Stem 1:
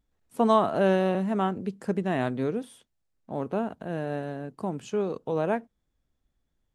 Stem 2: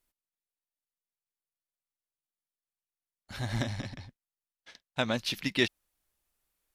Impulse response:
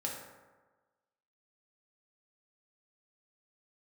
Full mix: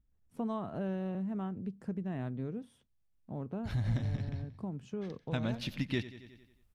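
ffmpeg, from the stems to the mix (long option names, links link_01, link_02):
-filter_complex "[0:a]equalizer=frequency=5600:width=8:gain=4.5,volume=-11.5dB[link_01];[1:a]adelay=350,volume=0dB,asplit=2[link_02][link_03];[link_03]volume=-16.5dB,aecho=0:1:90|180|270|360|450|540|630:1|0.49|0.24|0.118|0.0576|0.0282|0.0138[link_04];[link_01][link_02][link_04]amix=inputs=3:normalize=0,bass=frequency=250:gain=14,treble=frequency=4000:gain=-6,acompressor=threshold=-38dB:ratio=2"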